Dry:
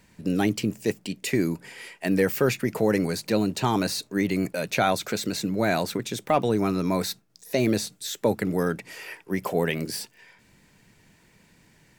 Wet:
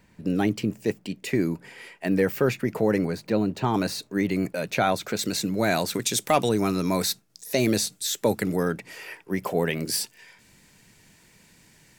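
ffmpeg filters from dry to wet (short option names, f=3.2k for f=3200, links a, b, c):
-af "asetnsamples=n=441:p=0,asendcmd='3.05 equalizer g -12.5;3.74 equalizer g -4;5.19 equalizer g 4.5;5.94 equalizer g 13;6.49 equalizer g 6.5;8.56 equalizer g -1.5;9.87 equalizer g 7.5',equalizer=f=9.5k:t=o:w=2.6:g=-6.5"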